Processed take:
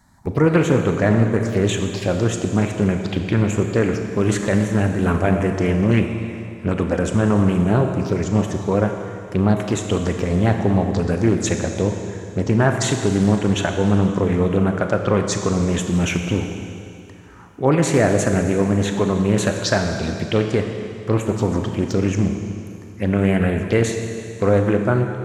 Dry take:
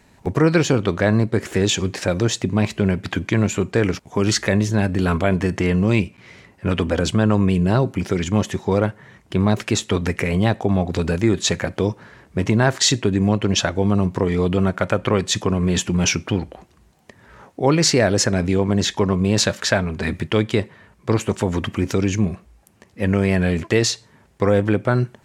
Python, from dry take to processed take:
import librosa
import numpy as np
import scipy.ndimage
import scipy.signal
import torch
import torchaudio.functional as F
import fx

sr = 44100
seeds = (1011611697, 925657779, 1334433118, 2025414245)

y = fx.env_phaser(x, sr, low_hz=440.0, high_hz=5000.0, full_db=-15.0)
y = fx.rev_schroeder(y, sr, rt60_s=2.6, comb_ms=27, drr_db=4.5)
y = fx.doppler_dist(y, sr, depth_ms=0.28)